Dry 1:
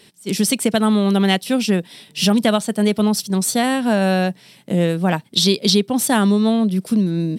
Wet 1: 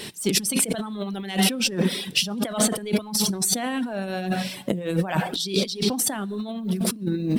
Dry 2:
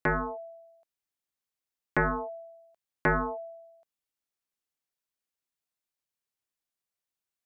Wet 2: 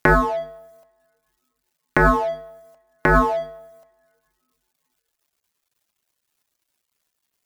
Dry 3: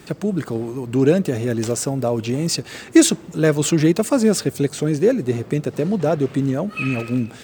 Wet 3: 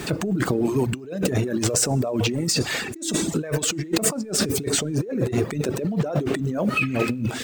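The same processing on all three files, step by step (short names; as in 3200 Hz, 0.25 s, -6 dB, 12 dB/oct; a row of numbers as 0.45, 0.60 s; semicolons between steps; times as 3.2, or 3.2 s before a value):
G.711 law mismatch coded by mu; two-slope reverb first 1 s, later 2.6 s, from -25 dB, DRR 9.5 dB; negative-ratio compressor -25 dBFS, ratio -1; reverb removal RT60 0.95 s; normalise peaks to -6 dBFS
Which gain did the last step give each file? +1.0, +12.0, +2.0 dB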